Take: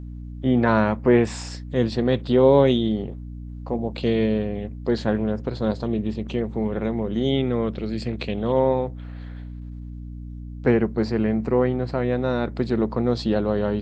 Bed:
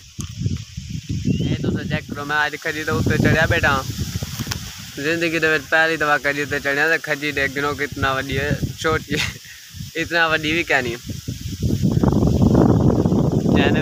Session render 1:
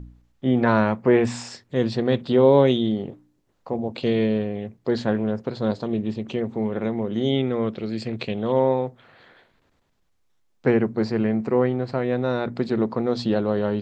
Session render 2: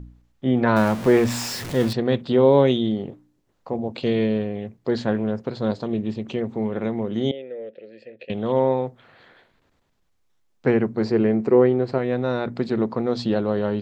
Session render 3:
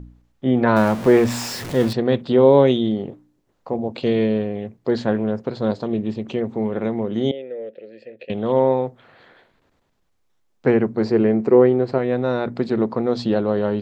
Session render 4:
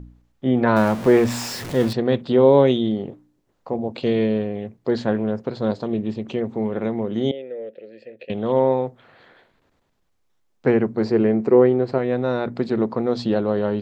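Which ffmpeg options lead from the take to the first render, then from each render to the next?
-af "bandreject=f=60:t=h:w=4,bandreject=f=120:t=h:w=4,bandreject=f=180:t=h:w=4,bandreject=f=240:t=h:w=4,bandreject=f=300:t=h:w=4"
-filter_complex "[0:a]asettb=1/sr,asplit=3[a][b][c];[a]atrim=end=0.764[d];[b]atrim=start=0.76:end=1.93,asetpts=PTS-STARTPTS,afade=t=in:d=0.004:c=qsin,afade=t=out:st=1.166:d=0.004:c=qsin,aeval=exprs='val(0)+0.5*0.0473*sgn(val(0))':c=same[e];[c]atrim=start=1.926[f];[d][e]acrossfade=d=0.004:c1=hsin:c2=qsin[g];[g][f]acrossfade=d=0.004:c1=qsin:c2=hsin,asettb=1/sr,asplit=3[h][i][j];[h]atrim=end=7.314[k];[i]atrim=start=7.31:end=8.3,asetpts=PTS-STARTPTS,afade=t=in:d=0.004:c=qsin,afade=t=out:st=0.986:d=0.004:c=qsin,asplit=3[l][m][n];[l]bandpass=f=530:t=q:w=8,volume=0dB[o];[m]bandpass=f=1.84k:t=q:w=8,volume=-6dB[p];[n]bandpass=f=2.48k:t=q:w=8,volume=-9dB[q];[o][p][q]amix=inputs=3:normalize=0[r];[j]atrim=start=8.296[s];[k][r]acrossfade=d=0.004:c1=hsin:c2=qsin[t];[t][s]acrossfade=d=0.004:c1=qsin:c2=hsin,asettb=1/sr,asplit=3[u][v][w];[u]atrim=end=11.044[x];[v]atrim=start=11.04:end=11.98,asetpts=PTS-STARTPTS,afade=t=in:d=0.004:c=qsin,afade=t=out:st=0.936:d=0.004:c=qsin,equalizer=f=390:t=o:w=0.77:g=7.5[y];[w]atrim=start=11.976[z];[x][y]acrossfade=d=0.004:c1=hsin:c2=qsin[aa];[aa][z]acrossfade=d=0.004:c1=qsin:c2=hsin"
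-af "equalizer=f=520:w=0.41:g=3"
-af "volume=-1dB"

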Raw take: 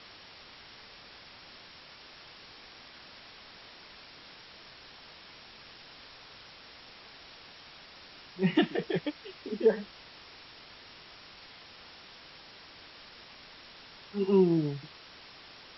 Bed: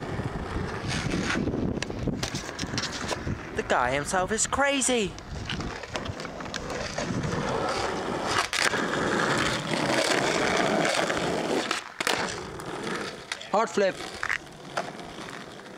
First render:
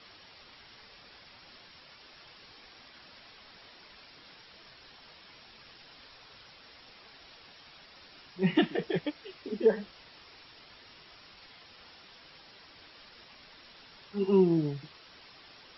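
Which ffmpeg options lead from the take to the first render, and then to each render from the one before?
-af "afftdn=nr=6:nf=-52"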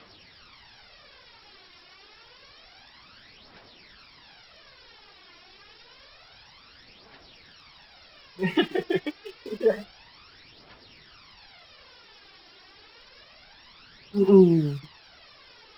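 -filter_complex "[0:a]asplit=2[a][b];[b]aeval=exprs='val(0)*gte(abs(val(0)),0.0112)':c=same,volume=-9.5dB[c];[a][c]amix=inputs=2:normalize=0,aphaser=in_gain=1:out_gain=1:delay=2.9:decay=0.56:speed=0.28:type=triangular"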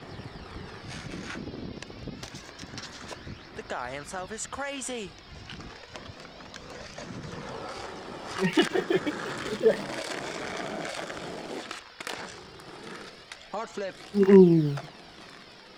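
-filter_complex "[1:a]volume=-10.5dB[a];[0:a][a]amix=inputs=2:normalize=0"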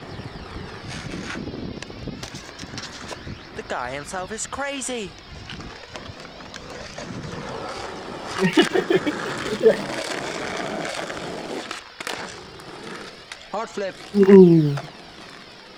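-af "volume=6.5dB,alimiter=limit=-1dB:level=0:latency=1"

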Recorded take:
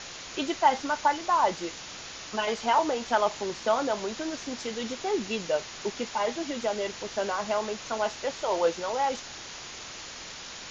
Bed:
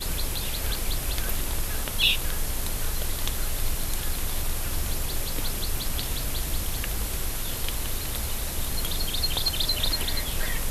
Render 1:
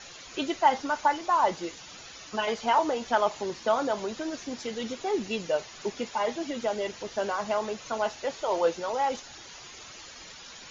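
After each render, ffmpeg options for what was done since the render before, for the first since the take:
-af "afftdn=nr=10:nf=-42"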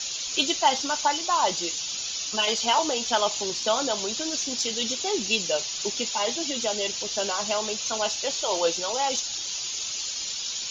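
-af "aexciter=amount=3.7:drive=8.4:freq=2.7k"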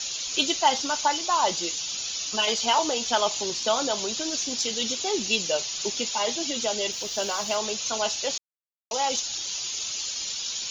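-filter_complex "[0:a]asettb=1/sr,asplit=3[a][b][c];[a]atrim=end=6.924[d];[b]atrim=start=6.92:end=7.56,asetpts=PTS-STARTPTS,afade=t=in:d=0.004:c=qsin,afade=t=out:st=0.636:d=0.004:c=qsin,aeval=exprs='sgn(val(0))*max(abs(val(0))-0.00398,0)':c=same[e];[c]atrim=start=7.556[f];[d][e]acrossfade=d=0.004:c1=hsin:c2=qsin[g];[g][f]acrossfade=d=0.004:c1=qsin:c2=hsin,asplit=3[h][i][j];[h]atrim=end=8.38,asetpts=PTS-STARTPTS,afade=t=out:st=8.376:d=0.004:c=hsin[k];[i]atrim=start=8.38:end=8.91,asetpts=PTS-STARTPTS,volume=0[l];[j]atrim=start=8.91,asetpts=PTS-STARTPTS,afade=t=in:d=0.004:c=hsin[m];[k][l][m]concat=n=3:v=0:a=1"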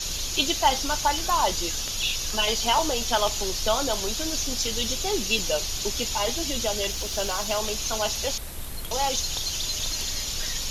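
-filter_complex "[1:a]volume=-6.5dB[a];[0:a][a]amix=inputs=2:normalize=0"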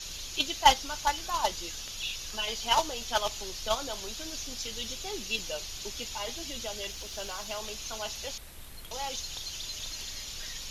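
-af "agate=range=-12dB:threshold=-19dB:ratio=16:detection=peak,equalizer=f=2.4k:w=0.58:g=4.5"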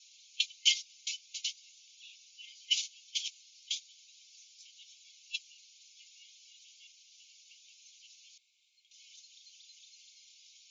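-af "agate=range=-18dB:threshold=-28dB:ratio=16:detection=peak,afftfilt=real='re*between(b*sr/4096,2100,7400)':imag='im*between(b*sr/4096,2100,7400)':win_size=4096:overlap=0.75"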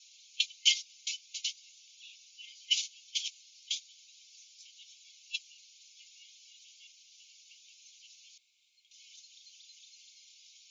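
-af "volume=1dB"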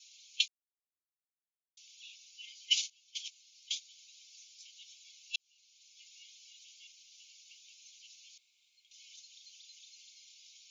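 -filter_complex "[0:a]asplit=5[a][b][c][d][e];[a]atrim=end=0.48,asetpts=PTS-STARTPTS,afade=t=out:st=0.476:d=0.004:c=hsin[f];[b]atrim=start=0.48:end=1.77,asetpts=PTS-STARTPTS,volume=0[g];[c]atrim=start=1.77:end=2.9,asetpts=PTS-STARTPTS,afade=t=in:d=0.004:c=hsin,afade=t=out:st=1.126:d=0.004:c=hsin:silence=0.223872[h];[d]atrim=start=2.9:end=5.36,asetpts=PTS-STARTPTS,afade=t=in:d=1.13:silence=0.223872,afade=t=out:st=2.456:d=0.004:c=hsin[i];[e]atrim=start=5.36,asetpts=PTS-STARTPTS,afade=t=in:d=0.8[j];[f][g][h][i][j]concat=n=5:v=0:a=1"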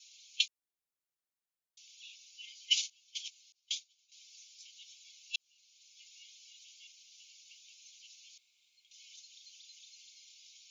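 -filter_complex "[0:a]asettb=1/sr,asplit=3[a][b][c];[a]atrim=end=3.524[d];[b]atrim=start=3.52:end=4.12,asetpts=PTS-STARTPTS,afade=t=in:d=0.004:c=qsin,afade=t=out:st=0.596:d=0.004:c=qsin,agate=range=-33dB:threshold=-49dB:ratio=3:release=100:detection=peak[e];[c]atrim=start=4.116[f];[d][e]acrossfade=d=0.004:c1=hsin:c2=qsin[g];[g][f]acrossfade=d=0.004:c1=qsin:c2=hsin"

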